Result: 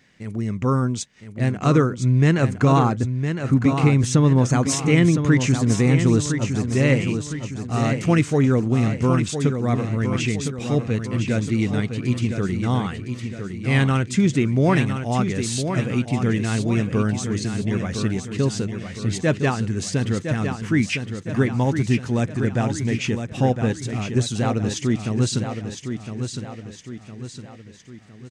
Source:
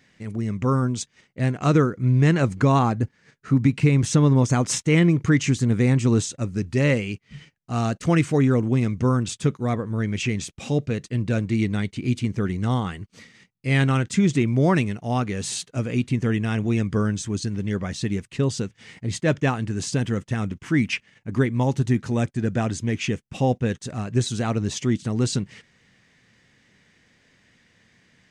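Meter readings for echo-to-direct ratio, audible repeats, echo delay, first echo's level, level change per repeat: -6.5 dB, 4, 1010 ms, -7.5 dB, -7.0 dB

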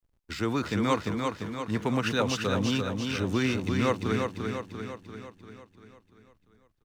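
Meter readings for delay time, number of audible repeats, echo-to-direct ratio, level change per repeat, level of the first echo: 344 ms, 7, -3.0 dB, -5.0 dB, -4.5 dB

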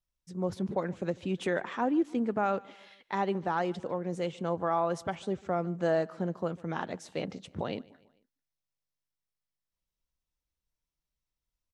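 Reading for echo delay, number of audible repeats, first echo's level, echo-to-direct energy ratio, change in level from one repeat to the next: 148 ms, 2, -23.5 dB, -22.5 dB, -6.0 dB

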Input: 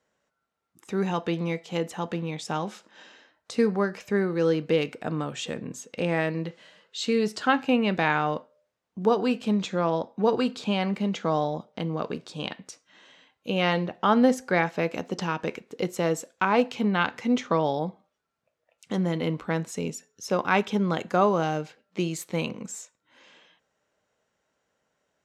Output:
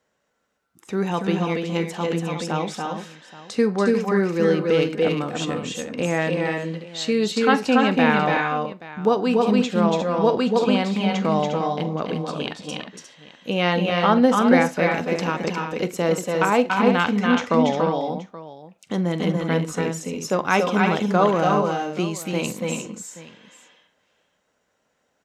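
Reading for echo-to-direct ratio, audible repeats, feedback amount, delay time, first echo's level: -1.5 dB, 4, no regular repeats, 45 ms, -18.0 dB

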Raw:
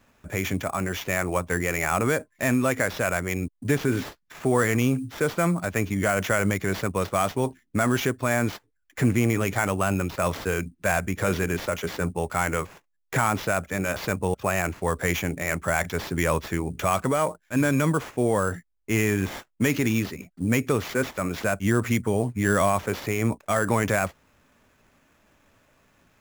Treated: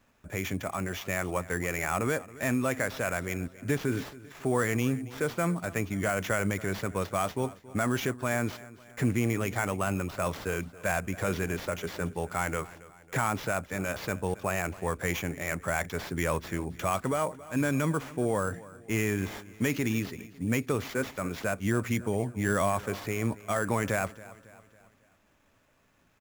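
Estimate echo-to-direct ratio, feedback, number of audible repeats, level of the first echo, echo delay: -18.0 dB, 48%, 3, -19.0 dB, 275 ms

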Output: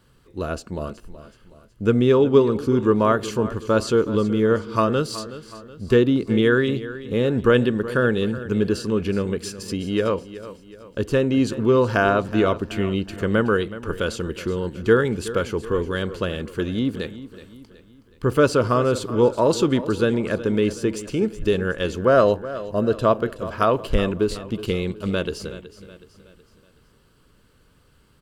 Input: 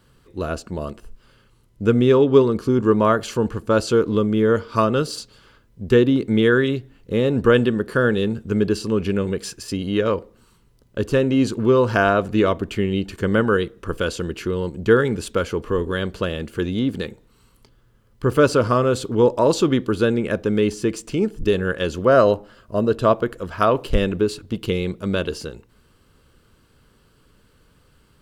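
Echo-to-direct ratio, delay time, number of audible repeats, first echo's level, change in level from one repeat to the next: -14.0 dB, 372 ms, 3, -15.0 dB, -7.0 dB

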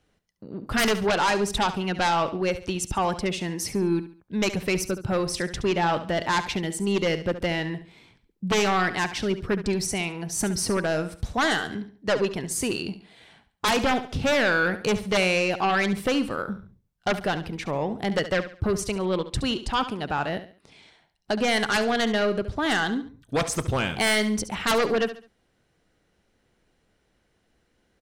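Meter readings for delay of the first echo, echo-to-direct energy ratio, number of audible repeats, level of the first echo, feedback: 70 ms, -12.0 dB, 3, -12.5 dB, 34%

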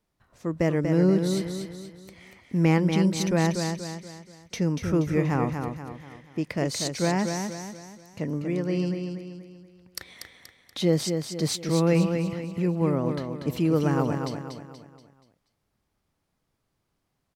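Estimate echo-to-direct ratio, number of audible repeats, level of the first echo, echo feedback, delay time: -5.0 dB, 4, -6.0 dB, 43%, 239 ms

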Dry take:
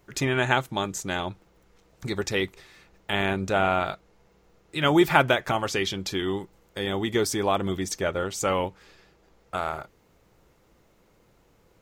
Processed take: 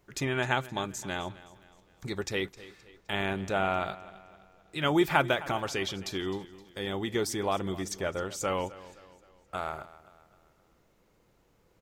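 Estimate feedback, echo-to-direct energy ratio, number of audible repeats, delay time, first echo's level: 44%, -17.0 dB, 3, 260 ms, -18.0 dB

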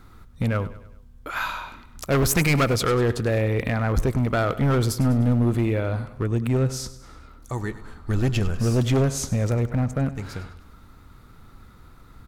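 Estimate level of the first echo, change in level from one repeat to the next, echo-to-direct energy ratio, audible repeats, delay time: -15.5 dB, -6.5 dB, -14.5 dB, 4, 100 ms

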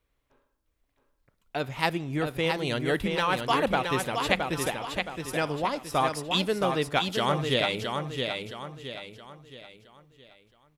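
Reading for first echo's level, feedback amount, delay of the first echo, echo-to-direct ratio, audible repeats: -5.0 dB, 40%, 669 ms, -4.0 dB, 4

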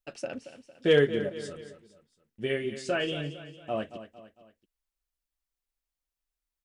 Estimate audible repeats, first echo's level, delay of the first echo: 3, -12.5 dB, 227 ms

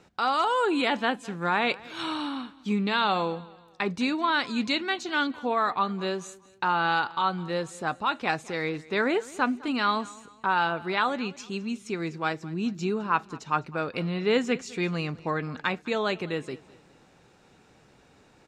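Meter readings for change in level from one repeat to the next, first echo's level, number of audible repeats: -8.5 dB, -21.0 dB, 2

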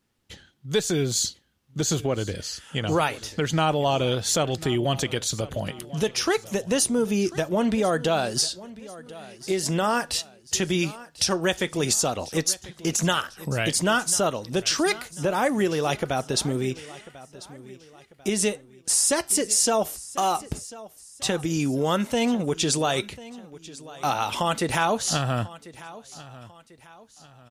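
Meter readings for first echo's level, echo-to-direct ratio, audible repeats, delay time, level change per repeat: -18.5 dB, -18.0 dB, 3, 1044 ms, -8.0 dB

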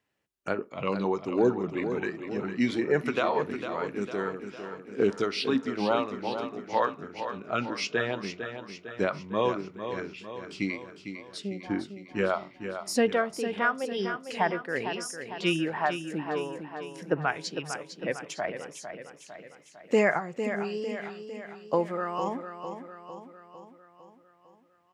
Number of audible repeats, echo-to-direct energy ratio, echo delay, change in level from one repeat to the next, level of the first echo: 6, -7.5 dB, 453 ms, -5.0 dB, -9.0 dB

